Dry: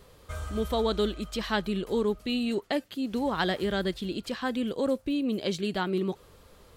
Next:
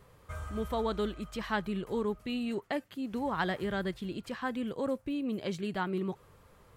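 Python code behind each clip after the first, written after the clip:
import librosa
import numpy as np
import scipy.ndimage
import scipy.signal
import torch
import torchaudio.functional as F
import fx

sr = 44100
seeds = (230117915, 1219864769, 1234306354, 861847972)

y = fx.graphic_eq(x, sr, hz=(125, 1000, 2000, 4000), db=(8, 5, 4, -5))
y = y * librosa.db_to_amplitude(-7.0)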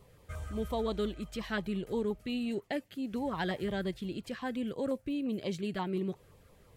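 y = fx.filter_lfo_notch(x, sr, shape='saw_down', hz=5.7, low_hz=800.0, high_hz=1700.0, q=1.4)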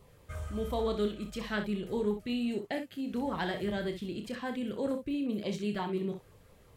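y = fx.room_early_taps(x, sr, ms=(29, 63), db=(-8.0, -9.0))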